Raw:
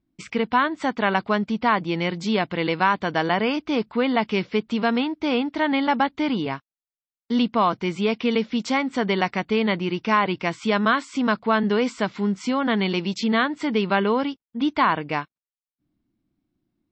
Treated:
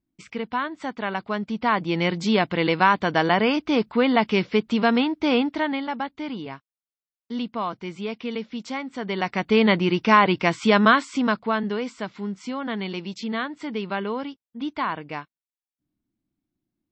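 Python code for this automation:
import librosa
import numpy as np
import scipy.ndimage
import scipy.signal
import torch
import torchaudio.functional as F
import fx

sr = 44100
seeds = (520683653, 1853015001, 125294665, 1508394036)

y = fx.gain(x, sr, db=fx.line((1.21, -6.5), (2.05, 2.0), (5.46, 2.0), (5.87, -8.0), (8.99, -8.0), (9.58, 4.0), (10.88, 4.0), (11.84, -7.0)))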